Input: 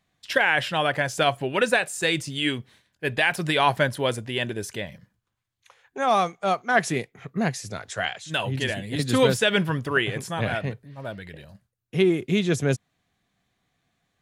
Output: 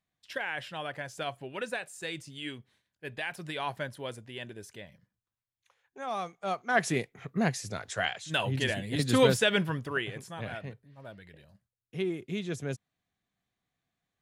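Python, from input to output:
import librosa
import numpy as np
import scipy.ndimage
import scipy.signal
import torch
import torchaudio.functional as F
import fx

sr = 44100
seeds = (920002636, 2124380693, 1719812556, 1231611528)

y = fx.gain(x, sr, db=fx.line((6.13, -14.0), (6.94, -3.0), (9.35, -3.0), (10.27, -12.0)))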